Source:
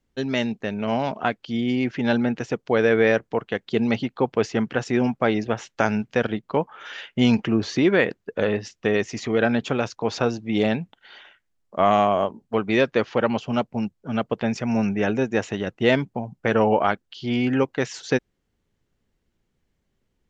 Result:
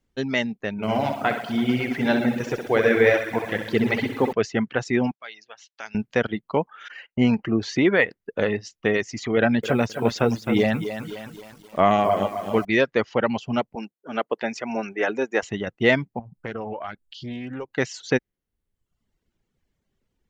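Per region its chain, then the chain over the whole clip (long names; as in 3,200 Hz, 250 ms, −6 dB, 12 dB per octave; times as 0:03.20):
0:00.72–0:04.33: flutter between parallel walls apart 11.1 metres, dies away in 0.88 s + feedback echo at a low word length 111 ms, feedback 80%, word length 7 bits, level −10 dB
0:05.11–0:05.95: resonant band-pass 6,100 Hz, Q 0.93 + high-frequency loss of the air 120 metres
0:06.88–0:07.59: noise gate −40 dBFS, range −16 dB + Butterworth band-reject 3,500 Hz, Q 5.3 + parametric band 5,700 Hz −10.5 dB 1.9 octaves
0:09.37–0:12.65: low-shelf EQ 440 Hz +3.5 dB + feedback echo at a low word length 262 ms, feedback 55%, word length 7 bits, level −7 dB
0:13.75–0:15.43: Chebyshev high-pass filter 360 Hz + dynamic equaliser 1,300 Hz, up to +3 dB, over −39 dBFS, Q 0.83
0:16.19–0:17.73: low-shelf EQ 100 Hz +9 dB + downward compressor 2 to 1, threshold −36 dBFS + highs frequency-modulated by the lows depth 0.17 ms
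whole clip: reverb reduction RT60 0.86 s; dynamic equaliser 2,000 Hz, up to +7 dB, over −48 dBFS, Q 6.9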